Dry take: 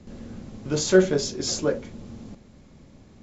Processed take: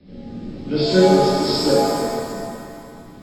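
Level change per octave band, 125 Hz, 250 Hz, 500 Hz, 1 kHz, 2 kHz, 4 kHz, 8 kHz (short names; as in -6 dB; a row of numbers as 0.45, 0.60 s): +6.5 dB, +7.5 dB, +6.5 dB, +19.0 dB, +3.0 dB, +7.5 dB, n/a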